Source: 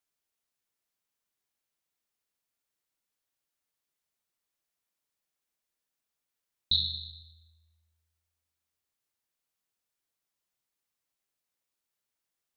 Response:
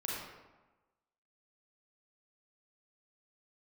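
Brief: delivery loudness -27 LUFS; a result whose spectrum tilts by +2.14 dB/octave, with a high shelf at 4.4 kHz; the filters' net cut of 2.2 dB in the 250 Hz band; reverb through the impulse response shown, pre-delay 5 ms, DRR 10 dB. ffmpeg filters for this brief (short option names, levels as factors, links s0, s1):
-filter_complex "[0:a]equalizer=f=250:t=o:g=-4,highshelf=f=4400:g=7,asplit=2[s0][s1];[1:a]atrim=start_sample=2205,adelay=5[s2];[s1][s2]afir=irnorm=-1:irlink=0,volume=0.224[s3];[s0][s3]amix=inputs=2:normalize=0,volume=0.891"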